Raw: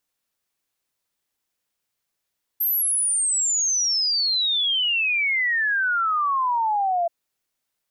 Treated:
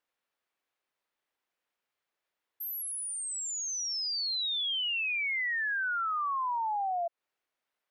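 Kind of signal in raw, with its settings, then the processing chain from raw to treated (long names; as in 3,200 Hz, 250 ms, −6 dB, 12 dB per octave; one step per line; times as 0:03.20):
exponential sine sweep 13,000 Hz → 670 Hz 4.48 s −19 dBFS
bass and treble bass −13 dB, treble −15 dB
downward compressor 10 to 1, threshold −30 dBFS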